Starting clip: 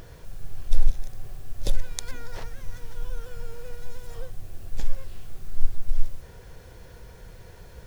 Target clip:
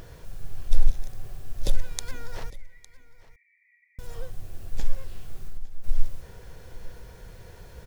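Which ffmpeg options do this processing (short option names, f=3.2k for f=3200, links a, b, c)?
-filter_complex "[0:a]asettb=1/sr,asplit=3[a][b][c];[a]atrim=end=2.504[d];[b]atrim=start=2.5:end=3.99,asetpts=PTS-STARTPTS,afade=t=in:d=0.004:c=qsin,afade=t=out:st=1.486:d=0.004:c=qsin,asuperpass=centerf=2100:order=12:qfactor=4.2[e];[c]atrim=start=3.986[f];[d][e]acrossfade=d=0.004:c1=hsin:c2=qsin[g];[g][f]acrossfade=d=0.004:c1=qsin:c2=hsin,asettb=1/sr,asplit=3[h][i][j];[h]atrim=end=5.434[k];[i]atrim=start=5.43:end=5.84,asetpts=PTS-STARTPTS,afade=t=in:d=0.004:c=qsin,afade=t=out:st=0.406:d=0.004:c=qsin,acompressor=threshold=-24dB:ratio=10[l];[j]atrim=start=5.836[m];[k][l]acrossfade=d=0.004:c1=hsin:c2=qsin[n];[n][m]acrossfade=d=0.004:c1=qsin:c2=hsin,aecho=1:1:857:0.106"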